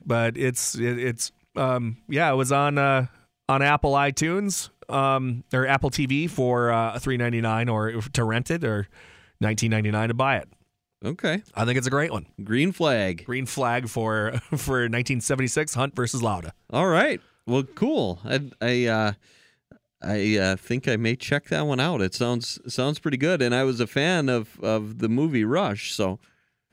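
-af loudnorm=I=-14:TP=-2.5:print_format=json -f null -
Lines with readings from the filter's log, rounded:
"input_i" : "-24.3",
"input_tp" : "-5.4",
"input_lra" : "2.6",
"input_thresh" : "-34.7",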